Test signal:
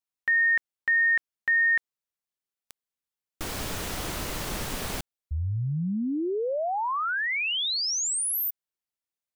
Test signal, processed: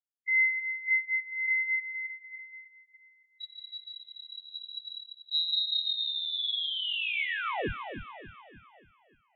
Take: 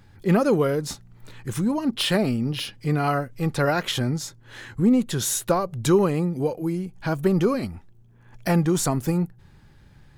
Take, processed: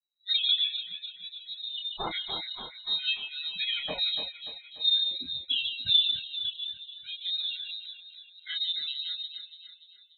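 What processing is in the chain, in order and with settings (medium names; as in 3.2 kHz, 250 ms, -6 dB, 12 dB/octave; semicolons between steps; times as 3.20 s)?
expander on every frequency bin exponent 3; on a send: echo whose repeats swap between lows and highs 146 ms, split 1.3 kHz, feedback 70%, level -5 dB; on the sum: chorus voices 4, 0.26 Hz, delay 26 ms, depth 1.4 ms; frequency inversion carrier 3.9 kHz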